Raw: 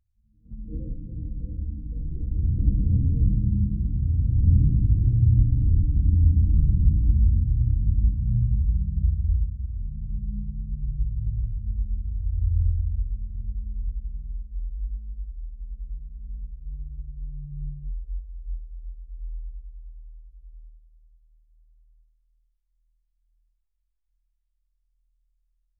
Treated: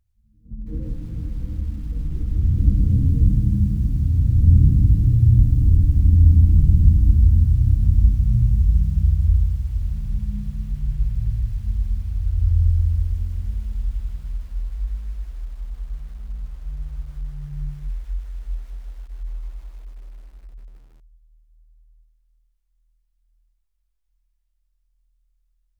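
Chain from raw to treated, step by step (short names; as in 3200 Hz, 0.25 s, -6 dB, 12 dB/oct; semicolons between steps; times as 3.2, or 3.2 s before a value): de-hum 168.9 Hz, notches 23; lo-fi delay 0.156 s, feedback 80%, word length 8-bit, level -15 dB; gain +4.5 dB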